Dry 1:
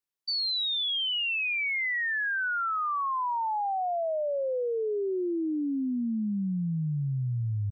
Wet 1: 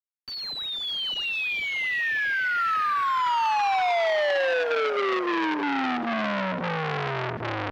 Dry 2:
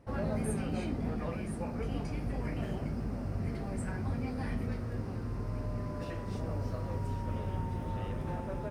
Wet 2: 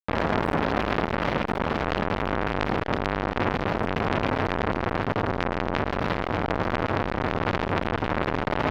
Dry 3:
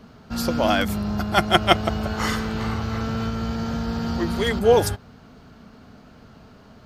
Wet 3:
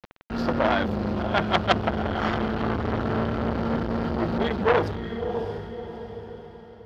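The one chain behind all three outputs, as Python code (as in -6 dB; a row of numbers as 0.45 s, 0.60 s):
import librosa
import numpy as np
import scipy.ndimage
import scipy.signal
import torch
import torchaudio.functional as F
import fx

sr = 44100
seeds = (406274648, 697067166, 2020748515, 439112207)

y = fx.hum_notches(x, sr, base_hz=60, count=8)
y = fx.dynamic_eq(y, sr, hz=2200.0, q=4.6, threshold_db=-47.0, ratio=4.0, max_db=-6)
y = fx.rider(y, sr, range_db=4, speed_s=2.0)
y = fx.quant_dither(y, sr, seeds[0], bits=6, dither='none')
y = fx.air_absorb(y, sr, metres=310.0)
y = fx.echo_diffused(y, sr, ms=624, feedback_pct=43, wet_db=-10)
y = fx.transformer_sat(y, sr, knee_hz=1900.0)
y = y * 10.0 ** (-26 / 20.0) / np.sqrt(np.mean(np.square(y)))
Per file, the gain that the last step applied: +8.5 dB, +19.0 dB, +2.5 dB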